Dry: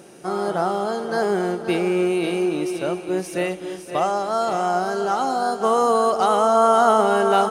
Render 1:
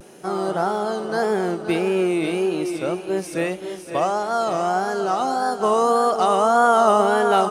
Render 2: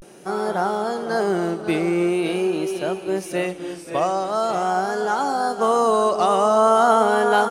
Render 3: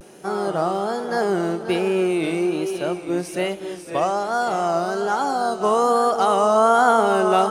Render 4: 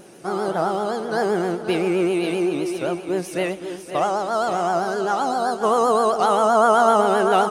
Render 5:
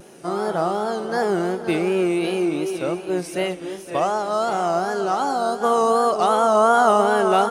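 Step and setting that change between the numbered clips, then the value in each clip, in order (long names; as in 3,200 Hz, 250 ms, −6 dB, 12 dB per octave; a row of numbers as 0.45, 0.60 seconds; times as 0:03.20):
pitch vibrato, speed: 1.7, 0.44, 1.2, 7.7, 2.7 Hertz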